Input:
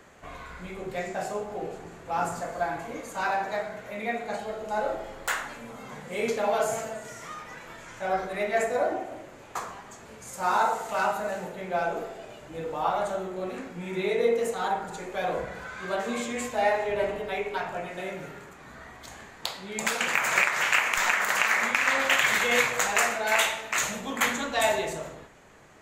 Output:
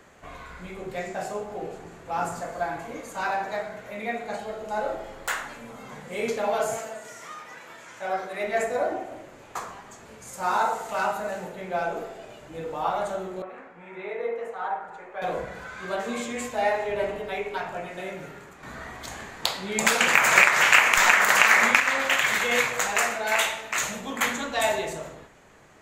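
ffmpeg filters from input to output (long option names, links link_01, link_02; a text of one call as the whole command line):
ffmpeg -i in.wav -filter_complex "[0:a]asettb=1/sr,asplit=3[link_01][link_02][link_03];[link_01]atrim=end=6.774[link_04];[link_02]atrim=start=6.77:end=8.44,asetpts=PTS-STARTPTS,afade=type=in:duration=0.004:curve=qsin,afade=type=out:start_time=1.666:duration=0.004:curve=qsin,highpass=frequency=330:poles=1[link_05];[link_03]atrim=start=8.436[link_06];[link_04][link_05]acrossfade=duration=0.004:curve1=hsin:curve2=qsin[link_07];[link_07][link_06]acrossfade=duration=0.004:curve1=qsin:curve2=hsin,asettb=1/sr,asplit=3[link_08][link_09][link_10];[link_08]atrim=end=13.424[link_11];[link_09]atrim=start=13.42:end=15.22,asetpts=PTS-STARTPTS,afade=type=in:duration=0.004:curve=qsin,afade=type=out:start_time=1.796:duration=0.004:curve=qsin,acrossover=split=530 2200:gain=0.178 1 0.0794[link_12][link_13][link_14];[link_12][link_13][link_14]amix=inputs=3:normalize=0[link_15];[link_10]atrim=start=15.216[link_16];[link_11][link_15]acrossfade=duration=0.004:curve1=hsin:curve2=qsin[link_17];[link_17][link_16]acrossfade=duration=0.004:curve1=qsin:curve2=hsin,asplit=3[link_18][link_19][link_20];[link_18]atrim=end=18.632[link_21];[link_19]atrim=start=18.628:end=21.802,asetpts=PTS-STARTPTS,volume=6.5dB[link_22];[link_20]atrim=start=21.798[link_23];[link_21][link_22]acrossfade=duration=0.004:curve1=hsin:curve2=hsin[link_24];[link_24][link_23]acrossfade=duration=0.004:curve1=hsin:curve2=hsin" out.wav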